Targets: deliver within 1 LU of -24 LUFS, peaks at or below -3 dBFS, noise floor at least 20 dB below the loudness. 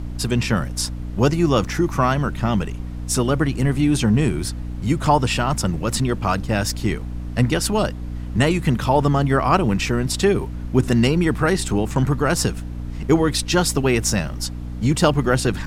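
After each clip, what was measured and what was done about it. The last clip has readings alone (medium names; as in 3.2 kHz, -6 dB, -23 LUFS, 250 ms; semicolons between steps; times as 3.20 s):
hum 60 Hz; highest harmonic 300 Hz; hum level -27 dBFS; noise floor -30 dBFS; noise floor target -41 dBFS; loudness -20.5 LUFS; peak level -3.0 dBFS; loudness target -24.0 LUFS
-> hum notches 60/120/180/240/300 Hz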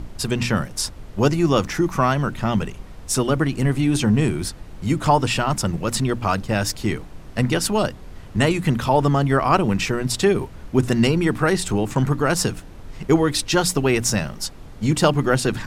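hum not found; noise floor -39 dBFS; noise floor target -41 dBFS
-> noise print and reduce 6 dB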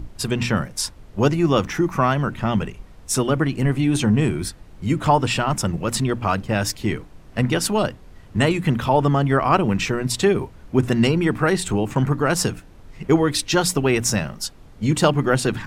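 noise floor -45 dBFS; loudness -21.0 LUFS; peak level -3.5 dBFS; loudness target -24.0 LUFS
-> trim -3 dB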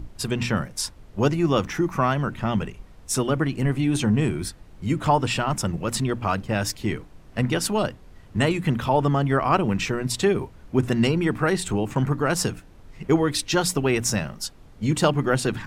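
loudness -24.0 LUFS; peak level -6.5 dBFS; noise floor -48 dBFS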